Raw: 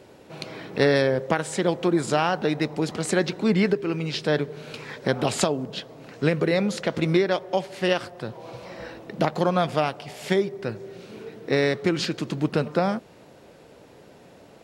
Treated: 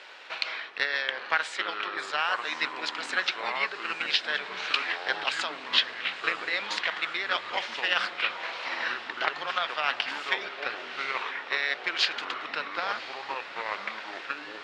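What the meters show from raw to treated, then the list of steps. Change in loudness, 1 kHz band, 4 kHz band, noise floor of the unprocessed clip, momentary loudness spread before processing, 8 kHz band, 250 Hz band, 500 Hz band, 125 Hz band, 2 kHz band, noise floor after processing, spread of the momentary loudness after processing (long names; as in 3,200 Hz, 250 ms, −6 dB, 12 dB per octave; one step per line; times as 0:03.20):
−4.5 dB, −2.0 dB, +4.5 dB, −50 dBFS, 16 LU, −10.0 dB, −23.0 dB, −15.5 dB, below −30 dB, +4.0 dB, −42 dBFS, 8 LU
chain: reversed playback
downward compressor 4 to 1, threshold −34 dBFS, peak gain reduction 17 dB
reversed playback
flat-topped band-pass 2,300 Hz, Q 0.77
on a send: feedback delay with all-pass diffusion 985 ms, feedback 65%, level −13 dB
on the sum: delay with pitch and tempo change per echo 526 ms, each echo −5 semitones, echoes 2, each echo −6 dB
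transient designer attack +6 dB, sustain +1 dB
boost into a limiter +19.5 dB
level −6.5 dB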